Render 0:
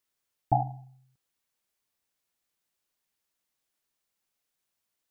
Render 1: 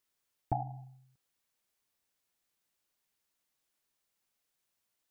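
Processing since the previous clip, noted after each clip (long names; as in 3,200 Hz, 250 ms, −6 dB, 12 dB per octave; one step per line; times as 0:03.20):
downward compressor 3 to 1, threshold −32 dBFS, peak gain reduction 10.5 dB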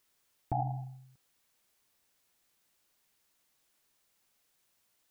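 brickwall limiter −30 dBFS, peak gain reduction 11.5 dB
level +8 dB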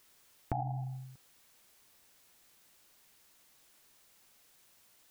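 downward compressor 4 to 1, threshold −44 dBFS, peak gain reduction 13.5 dB
level +9.5 dB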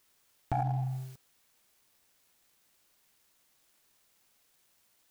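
leveller curve on the samples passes 2
level −1.5 dB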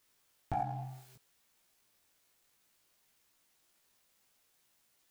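chorus effect 0.63 Hz, delay 17 ms, depth 2.9 ms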